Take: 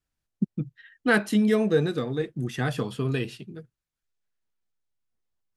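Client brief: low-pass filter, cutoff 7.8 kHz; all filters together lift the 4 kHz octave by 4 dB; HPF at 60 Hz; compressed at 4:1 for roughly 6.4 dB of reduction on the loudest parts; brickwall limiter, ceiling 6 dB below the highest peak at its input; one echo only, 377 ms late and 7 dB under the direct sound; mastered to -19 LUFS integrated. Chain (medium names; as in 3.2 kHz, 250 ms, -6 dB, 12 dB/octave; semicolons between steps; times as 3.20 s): high-pass 60 Hz; low-pass 7.8 kHz; peaking EQ 4 kHz +5 dB; compression 4:1, threshold -24 dBFS; peak limiter -20.5 dBFS; delay 377 ms -7 dB; trim +12.5 dB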